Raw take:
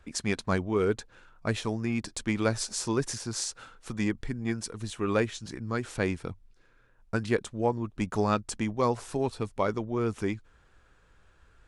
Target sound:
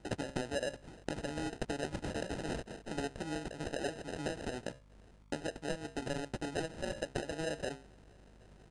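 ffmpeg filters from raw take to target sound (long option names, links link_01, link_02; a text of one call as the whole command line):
ffmpeg -i in.wav -filter_complex "[0:a]highpass=frequency=140:poles=1,lowshelf=frequency=360:gain=-7.5,bandreject=frequency=50:width_type=h:width=6,bandreject=frequency=100:width_type=h:width=6,bandreject=frequency=150:width_type=h:width=6,bandreject=frequency=200:width_type=h:width=6,bandreject=frequency=250:width_type=h:width=6,bandreject=frequency=300:width_type=h:width=6,bandreject=frequency=350:width_type=h:width=6,bandreject=frequency=400:width_type=h:width=6,acrossover=split=180|1100|5400[link_01][link_02][link_03][link_04];[link_03]alimiter=level_in=6dB:limit=-24dB:level=0:latency=1:release=370,volume=-6dB[link_05];[link_01][link_02][link_05][link_04]amix=inputs=4:normalize=0,acompressor=threshold=-41dB:ratio=5,asetrate=59094,aresample=44100,aeval=exprs='val(0)+0.000501*(sin(2*PI*50*n/s)+sin(2*PI*2*50*n/s)/2+sin(2*PI*3*50*n/s)/3+sin(2*PI*4*50*n/s)/4+sin(2*PI*5*50*n/s)/5)':channel_layout=same,acrusher=samples=39:mix=1:aa=0.000001,aresample=22050,aresample=44100,volume=6dB" out.wav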